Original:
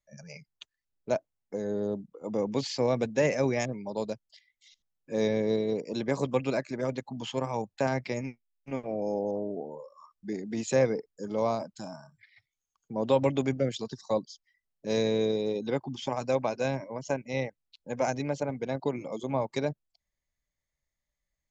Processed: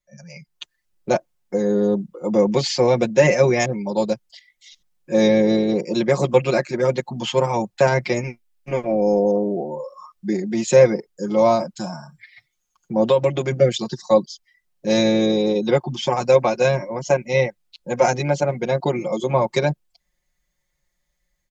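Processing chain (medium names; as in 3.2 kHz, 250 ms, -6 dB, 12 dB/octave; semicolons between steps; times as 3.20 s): 13.06–13.52 s: compression 4:1, threshold -27 dBFS, peak gain reduction 8 dB; comb 5.6 ms, depth 95%; level rider gain up to 9.5 dB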